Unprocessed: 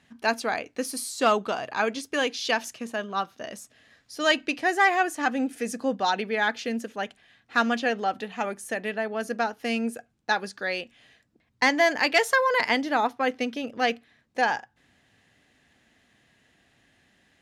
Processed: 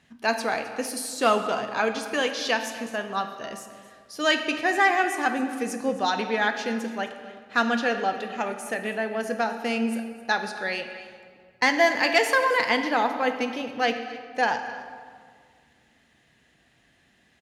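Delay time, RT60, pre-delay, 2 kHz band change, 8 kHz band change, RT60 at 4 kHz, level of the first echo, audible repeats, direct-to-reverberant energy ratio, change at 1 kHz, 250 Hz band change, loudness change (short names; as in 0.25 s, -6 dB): 0.263 s, 1.9 s, 3 ms, +1.0 dB, +0.5 dB, 1.2 s, -17.5 dB, 1, 6.0 dB, +1.0 dB, +1.0 dB, +1.0 dB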